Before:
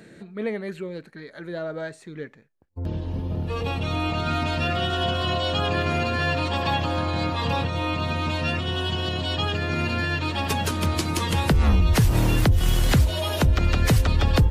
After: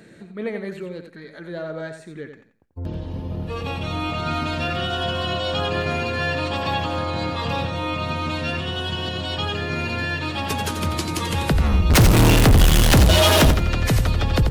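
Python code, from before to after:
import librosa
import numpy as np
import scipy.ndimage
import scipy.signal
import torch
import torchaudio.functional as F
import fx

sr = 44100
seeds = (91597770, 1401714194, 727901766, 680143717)

y = fx.leveller(x, sr, passes=5, at=(11.9, 13.51))
y = fx.echo_feedback(y, sr, ms=88, feedback_pct=25, wet_db=-8.0)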